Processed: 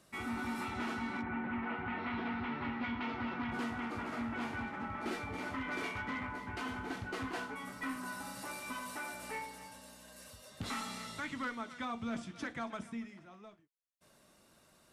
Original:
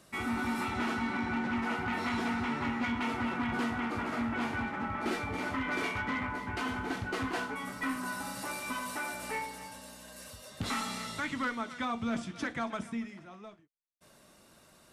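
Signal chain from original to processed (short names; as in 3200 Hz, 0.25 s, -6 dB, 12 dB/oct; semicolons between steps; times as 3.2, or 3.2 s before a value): 1.21–3.5 LPF 2400 Hz -> 5300 Hz 24 dB/oct; gain -5.5 dB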